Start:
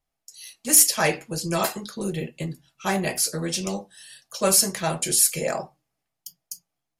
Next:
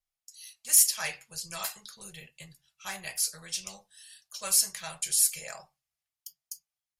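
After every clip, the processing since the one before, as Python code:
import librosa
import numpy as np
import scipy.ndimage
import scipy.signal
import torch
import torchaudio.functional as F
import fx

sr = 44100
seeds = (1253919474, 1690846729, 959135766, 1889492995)

y = fx.tone_stack(x, sr, knobs='10-0-10')
y = y * 10.0 ** (-4.5 / 20.0)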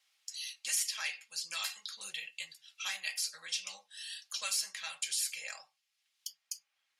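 y = fx.bandpass_q(x, sr, hz=3000.0, q=1.0)
y = y + 0.33 * np.pad(y, (int(3.7 * sr / 1000.0), 0))[:len(y)]
y = fx.band_squash(y, sr, depth_pct=70)
y = y * 10.0 ** (2.0 / 20.0)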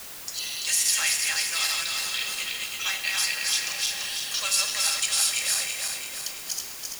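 y = fx.reverse_delay_fb(x, sr, ms=168, feedback_pct=72, wet_db=-1.5)
y = fx.rev_schroeder(y, sr, rt60_s=1.9, comb_ms=26, drr_db=8.0)
y = fx.quant_dither(y, sr, seeds[0], bits=8, dither='triangular')
y = y * 10.0 ** (8.0 / 20.0)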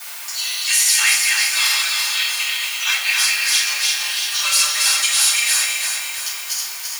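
y = scipy.signal.sosfilt(scipy.signal.butter(2, 960.0, 'highpass', fs=sr, output='sos'), x)
y = fx.room_shoebox(y, sr, seeds[1], volume_m3=360.0, walls='furnished', distance_m=7.6)
y = y * 10.0 ** (-1.0 / 20.0)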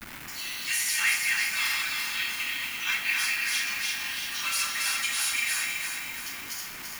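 y = fx.delta_hold(x, sr, step_db=-25.0)
y = fx.graphic_eq(y, sr, hz=(250, 500, 2000, 4000, 8000), db=(6, -7, 4, -5, -6))
y = y * 10.0 ** (-8.5 / 20.0)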